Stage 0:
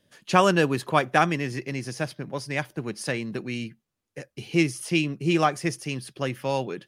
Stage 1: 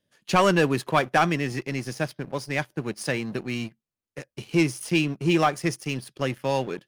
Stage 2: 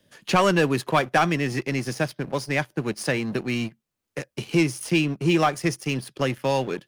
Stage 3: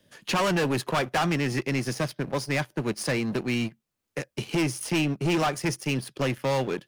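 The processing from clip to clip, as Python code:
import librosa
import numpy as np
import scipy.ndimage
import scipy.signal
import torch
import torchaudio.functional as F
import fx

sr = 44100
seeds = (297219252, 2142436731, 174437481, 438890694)

y1 = fx.leveller(x, sr, passes=2)
y1 = y1 * 10.0 ** (-6.0 / 20.0)
y2 = fx.band_squash(y1, sr, depth_pct=40)
y2 = y2 * 10.0 ** (1.5 / 20.0)
y3 = np.clip(y2, -10.0 ** (-21.0 / 20.0), 10.0 ** (-21.0 / 20.0))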